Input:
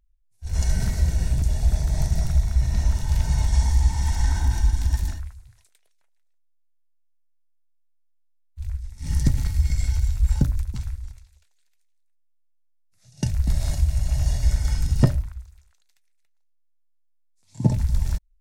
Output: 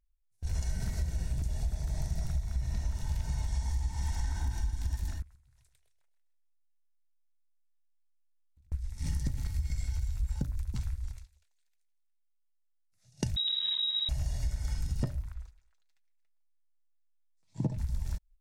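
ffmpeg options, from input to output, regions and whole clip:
ffmpeg -i in.wav -filter_complex "[0:a]asettb=1/sr,asplit=3[link_01][link_02][link_03];[link_01]atrim=end=5.224[link_04];[link_02]atrim=start=5.22:end=8.72,asetpts=PTS-STARTPTS,afade=type=in:duration=0.004:curve=qsin,afade=type=out:start_time=3.496:duration=0.004:curve=qsin,aecho=1:1:128|256|384|512:0.266|0.0984|0.0364|0.0135,atrim=end_sample=154350,acompressor=threshold=-50dB:ratio=16:attack=3.2:release=140:knee=1:detection=peak[link_05];[link_03]atrim=start=8.716[link_06];[link_04][link_05]acrossfade=duration=0.004:curve1=hsin:curve2=qsin[link_07];[link_07][link_06]acrossfade=duration=0.004:curve1=qsin:curve2=hsin,asettb=1/sr,asplit=3[link_08][link_09][link_10];[link_08]atrim=end=13.364[link_11];[link_09]atrim=start=13.36:end=14.09,asetpts=PTS-STARTPTS,afade=type=in:duration=0.004:curve=qsin,afade=type=out:start_time=0.726:duration=0.004:curve=qsin,equalizer=frequency=250:width_type=o:width=1.6:gain=13.5,asoftclip=type=hard:threshold=-20dB,lowpass=frequency=3300:width_type=q:width=0.5098,lowpass=frequency=3300:width_type=q:width=0.6013,lowpass=frequency=3300:width_type=q:width=0.9,lowpass=frequency=3300:width_type=q:width=2.563,afreqshift=-3900[link_12];[link_10]atrim=start=14.086[link_13];[link_11][link_12]acrossfade=duration=0.004:curve1=hsin:curve2=qsin[link_14];[link_14][link_13]acrossfade=duration=0.004:curve1=qsin:curve2=hsin,asettb=1/sr,asplit=3[link_15][link_16][link_17];[link_15]atrim=end=15.334[link_18];[link_16]atrim=start=15.33:end=17.78,asetpts=PTS-STARTPTS,afade=type=in:duration=0.004:curve=qsin,afade=type=out:start_time=2.446:duration=0.004:curve=qsin,lowpass=frequency=3200:poles=1,equalizer=frequency=78:width=4:gain=-9,aecho=1:1:6.2:0.47,atrim=end_sample=108045[link_19];[link_17]atrim=start=17.776[link_20];[link_18][link_19]acrossfade=duration=0.004:curve1=hsin:curve2=qsin[link_21];[link_21][link_20]acrossfade=duration=0.004:curve1=qsin:curve2=hsin,agate=range=-10dB:threshold=-45dB:ratio=16:detection=peak,acompressor=threshold=-29dB:ratio=6" out.wav

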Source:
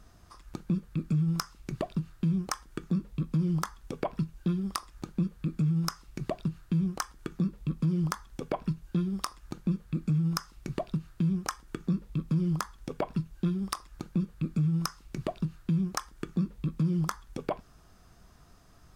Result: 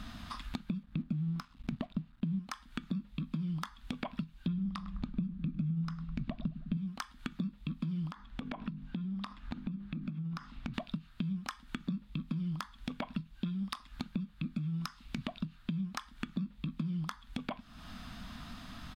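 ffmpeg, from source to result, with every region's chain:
ffmpeg -i in.wav -filter_complex "[0:a]asettb=1/sr,asplit=3[link_01][link_02][link_03];[link_01]atrim=end=0.834[link_04];[link_02]atrim=start=0.83:end=2.39,asetpts=PTS-STARTPTS,afade=type=in:duration=0.004:curve=qsin,afade=type=out:start_time=1.556:duration=0.004:curve=qsin,tiltshelf=frequency=1100:gain=6,aeval=exprs='sgn(val(0))*max(abs(val(0))-0.00237,0)':channel_layout=same[link_05];[link_03]atrim=start=2.386[link_06];[link_04][link_05]acrossfade=duration=0.004:curve1=hsin:curve2=qsin[link_07];[link_07][link_06]acrossfade=duration=0.004:curve1=qsin:curve2=hsin,asettb=1/sr,asplit=3[link_08][link_09][link_10];[link_08]atrim=end=4.474[link_11];[link_09]atrim=start=4.47:end=6.77,asetpts=PTS-STARTPTS,afade=type=in:duration=0.004:curve=qsin,afade=type=out:start_time=2.296:duration=0.004:curve=qsin,aemphasis=mode=reproduction:type=bsi,asplit=2[link_12][link_13];[link_13]adelay=103,lowpass=frequency=1100:poles=1,volume=-13dB,asplit=2[link_14][link_15];[link_15]adelay=103,lowpass=frequency=1100:poles=1,volume=0.52,asplit=2[link_16][link_17];[link_17]adelay=103,lowpass=frequency=1100:poles=1,volume=0.52,asplit=2[link_18][link_19];[link_19]adelay=103,lowpass=frequency=1100:poles=1,volume=0.52,asplit=2[link_20][link_21];[link_21]adelay=103,lowpass=frequency=1100:poles=1,volume=0.52[link_22];[link_12][link_14][link_16][link_18][link_20][link_22]amix=inputs=6:normalize=0,atrim=end_sample=101430[link_23];[link_10]atrim=start=6.766[link_24];[link_11][link_23]acrossfade=duration=0.004:curve1=hsin:curve2=qsin[link_25];[link_25][link_24]acrossfade=duration=0.004:curve1=qsin:curve2=hsin,asettb=1/sr,asplit=3[link_26][link_27][link_28];[link_26]atrim=end=8.114[link_29];[link_27]atrim=start=8.11:end=10.74,asetpts=PTS-STARTPTS,afade=type=in:duration=0.004:curve=qsin,afade=type=out:start_time=2.626:duration=0.004:curve=qsin,lowpass=frequency=1600:poles=1,bandreject=frequency=50:width_type=h:width=6,bandreject=frequency=100:width_type=h:width=6,bandreject=frequency=150:width_type=h:width=6,bandreject=frequency=200:width_type=h:width=6,bandreject=frequency=250:width_type=h:width=6,bandreject=frequency=300:width_type=h:width=6,bandreject=frequency=350:width_type=h:width=6,bandreject=frequency=400:width_type=h:width=6,bandreject=frequency=450:width_type=h:width=6,acompressor=threshold=-39dB:ratio=2.5:attack=3.2:release=140:knee=1:detection=peak[link_30];[link_28]atrim=start=10.736[link_31];[link_29][link_30]acrossfade=duration=0.004:curve1=hsin:curve2=qsin[link_32];[link_32][link_31]acrossfade=duration=0.004:curve1=qsin:curve2=hsin,firequalizer=gain_entry='entry(140,0);entry(240,13);entry(370,-13);entry(640,-1);entry(970,3);entry(3600,12);entry(5800,-4)':delay=0.05:min_phase=1,acompressor=threshold=-47dB:ratio=4,volume=8.5dB" out.wav

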